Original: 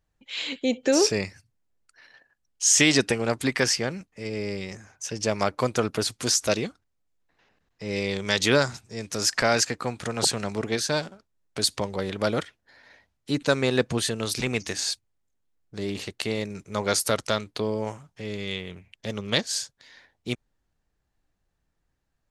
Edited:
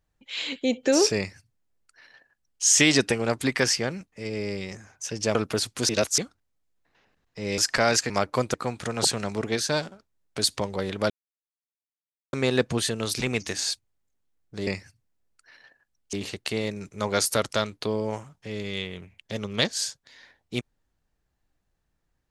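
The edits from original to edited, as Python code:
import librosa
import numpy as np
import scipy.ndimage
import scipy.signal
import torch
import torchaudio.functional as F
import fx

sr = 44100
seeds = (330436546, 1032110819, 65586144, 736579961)

y = fx.edit(x, sr, fx.duplicate(start_s=1.17, length_s=1.46, to_s=15.87),
    fx.move(start_s=5.35, length_s=0.44, to_s=9.74),
    fx.reverse_span(start_s=6.33, length_s=0.29),
    fx.cut(start_s=8.02, length_s=1.2),
    fx.silence(start_s=12.3, length_s=1.23), tone=tone)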